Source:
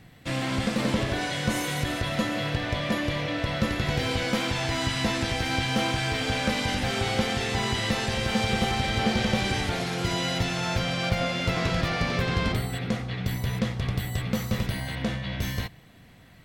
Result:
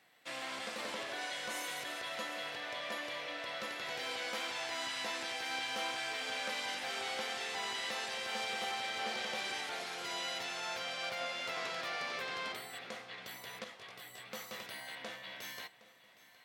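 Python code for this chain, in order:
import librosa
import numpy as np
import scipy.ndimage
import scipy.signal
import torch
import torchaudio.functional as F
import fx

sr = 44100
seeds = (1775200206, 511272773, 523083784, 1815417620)

y = scipy.signal.sosfilt(scipy.signal.butter(2, 610.0, 'highpass', fs=sr, output='sos'), x)
y = fx.echo_feedback(y, sr, ms=764, feedback_pct=48, wet_db=-18.5)
y = fx.detune_double(y, sr, cents=13, at=(13.64, 14.32))
y = y * 10.0 ** (-9.0 / 20.0)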